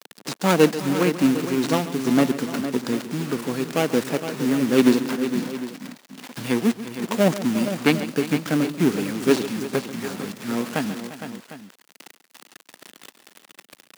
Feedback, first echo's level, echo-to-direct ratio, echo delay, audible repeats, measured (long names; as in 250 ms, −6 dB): repeats not evenly spaced, −14.5 dB, −7.5 dB, 139 ms, 4